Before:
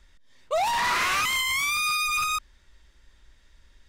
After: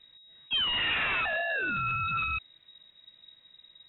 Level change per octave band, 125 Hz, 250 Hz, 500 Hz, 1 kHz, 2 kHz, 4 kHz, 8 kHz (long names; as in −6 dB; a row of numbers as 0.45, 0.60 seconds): +6.5 dB, +2.5 dB, −6.5 dB, −8.0 dB, −3.0 dB, −1.0 dB, below −40 dB